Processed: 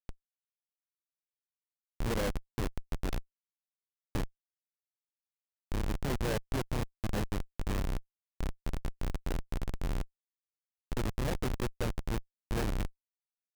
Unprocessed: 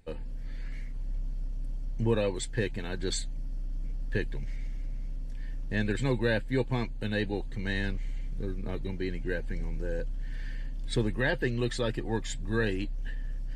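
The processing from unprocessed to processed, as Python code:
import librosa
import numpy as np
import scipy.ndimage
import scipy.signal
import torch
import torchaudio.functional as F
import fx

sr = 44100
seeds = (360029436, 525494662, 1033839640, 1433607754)

y = fx.filter_lfo_lowpass(x, sr, shape='square', hz=0.32, low_hz=750.0, high_hz=3500.0, q=1.6)
y = fx.schmitt(y, sr, flips_db=-25.5)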